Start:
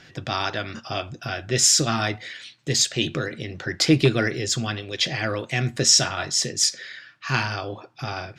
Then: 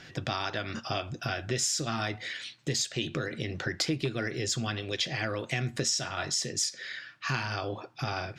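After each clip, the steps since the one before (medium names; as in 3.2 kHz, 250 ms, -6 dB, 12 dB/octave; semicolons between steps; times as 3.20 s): compression 5:1, threshold -28 dBFS, peak gain reduction 14.5 dB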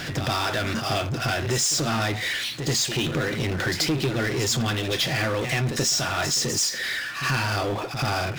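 pre-echo 83 ms -13 dB; power-law waveshaper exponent 0.5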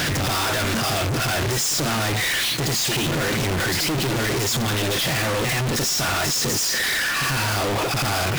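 companded quantiser 2-bit; trim +2.5 dB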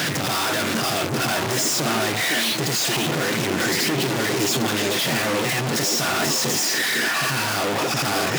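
high-pass 130 Hz 24 dB/octave; repeats whose band climbs or falls 508 ms, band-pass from 310 Hz, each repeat 1.4 oct, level -1 dB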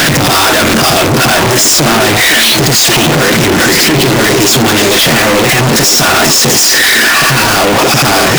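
power-law waveshaper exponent 0.35; trim +7.5 dB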